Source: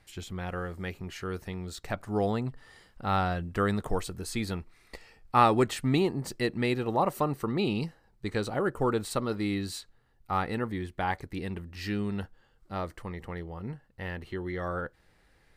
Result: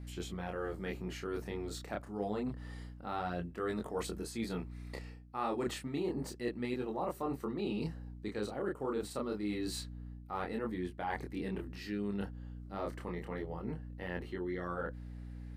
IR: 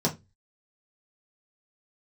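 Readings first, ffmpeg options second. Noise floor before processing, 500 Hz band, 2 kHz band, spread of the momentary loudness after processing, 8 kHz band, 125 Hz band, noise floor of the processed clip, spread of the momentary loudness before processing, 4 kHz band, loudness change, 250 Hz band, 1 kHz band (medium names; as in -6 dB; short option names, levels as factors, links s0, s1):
-65 dBFS, -6.5 dB, -8.5 dB, 8 LU, -6.5 dB, -9.5 dB, -50 dBFS, 13 LU, -8.0 dB, -8.0 dB, -6.5 dB, -11.0 dB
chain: -af "flanger=delay=22.5:depth=7.9:speed=0.28,highpass=280,lowshelf=f=430:g=11,aeval=exprs='val(0)+0.00562*(sin(2*PI*60*n/s)+sin(2*PI*2*60*n/s)/2+sin(2*PI*3*60*n/s)/3+sin(2*PI*4*60*n/s)/4+sin(2*PI*5*60*n/s)/5)':c=same,areverse,acompressor=threshold=0.0158:ratio=4,areverse,volume=1.12"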